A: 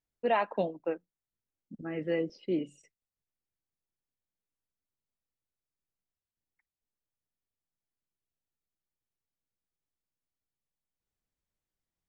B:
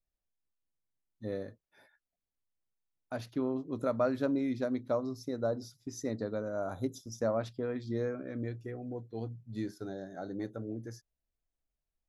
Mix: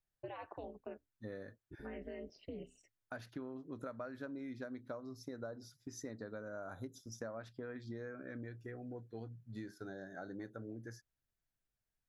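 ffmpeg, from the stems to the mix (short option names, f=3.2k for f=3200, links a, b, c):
-filter_complex "[0:a]alimiter=level_in=3dB:limit=-24dB:level=0:latency=1:release=52,volume=-3dB,aeval=exprs='val(0)*sin(2*PI*110*n/s)':c=same,volume=-4dB[a];[1:a]equalizer=f=1.6k:t=o:w=0.59:g=10,volume=-5dB[b];[a][b]amix=inputs=2:normalize=0,acompressor=threshold=-42dB:ratio=6"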